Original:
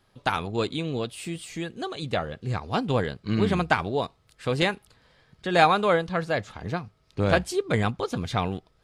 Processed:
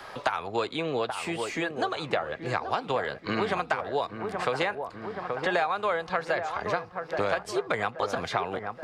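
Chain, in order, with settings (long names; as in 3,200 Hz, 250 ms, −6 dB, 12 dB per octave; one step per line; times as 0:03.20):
three-way crossover with the lows and the highs turned down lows −18 dB, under 500 Hz, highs −19 dB, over 3,100 Hz
downward compressor 4 to 1, threshold −31 dBFS, peak gain reduction 14 dB
high shelf with overshoot 4,200 Hz +7 dB, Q 1.5
on a send: delay with a low-pass on its return 828 ms, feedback 45%, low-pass 1,500 Hz, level −9 dB
on the sum: multiband upward and downward compressor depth 70%
level +7 dB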